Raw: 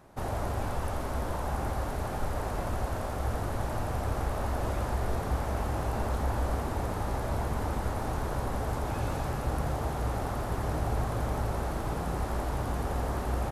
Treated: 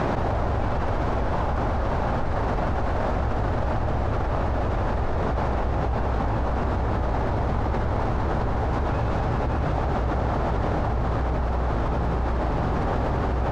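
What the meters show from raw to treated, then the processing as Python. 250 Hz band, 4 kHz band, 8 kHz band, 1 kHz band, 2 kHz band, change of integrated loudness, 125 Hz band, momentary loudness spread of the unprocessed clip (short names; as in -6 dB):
+8.0 dB, +3.0 dB, n/a, +7.0 dB, +6.5 dB, +7.0 dB, +7.0 dB, 2 LU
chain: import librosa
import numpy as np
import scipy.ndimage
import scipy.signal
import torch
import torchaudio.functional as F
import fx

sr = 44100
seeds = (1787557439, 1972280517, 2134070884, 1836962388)

y = fx.air_absorb(x, sr, metres=180.0)
y = y + 10.0 ** (-3.5 / 20.0) * np.pad(y, (int(578 * sr / 1000.0), 0))[:len(y)]
y = fx.env_flatten(y, sr, amount_pct=100)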